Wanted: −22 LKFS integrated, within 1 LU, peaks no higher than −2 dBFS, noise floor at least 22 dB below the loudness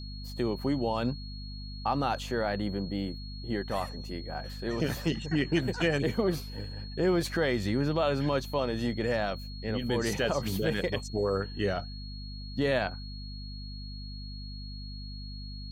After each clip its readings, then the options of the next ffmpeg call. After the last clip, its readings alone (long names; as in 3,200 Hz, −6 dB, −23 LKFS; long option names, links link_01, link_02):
mains hum 50 Hz; hum harmonics up to 250 Hz; level of the hum −38 dBFS; interfering tone 4,300 Hz; level of the tone −46 dBFS; integrated loudness −31.0 LKFS; sample peak −15.5 dBFS; target loudness −22.0 LKFS
→ -af "bandreject=frequency=50:width_type=h:width=6,bandreject=frequency=100:width_type=h:width=6,bandreject=frequency=150:width_type=h:width=6,bandreject=frequency=200:width_type=h:width=6,bandreject=frequency=250:width_type=h:width=6"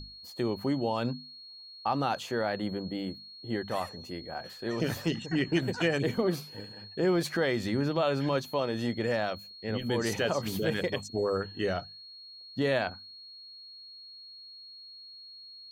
mains hum none found; interfering tone 4,300 Hz; level of the tone −46 dBFS
→ -af "bandreject=frequency=4300:width=30"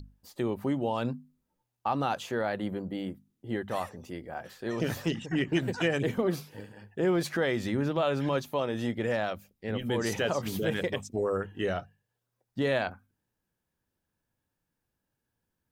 interfering tone none found; integrated loudness −31.0 LKFS; sample peak −15.5 dBFS; target loudness −22.0 LKFS
→ -af "volume=9dB"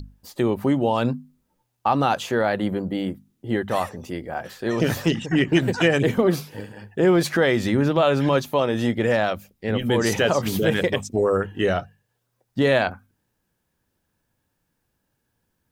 integrated loudness −22.0 LKFS; sample peak −6.5 dBFS; background noise floor −75 dBFS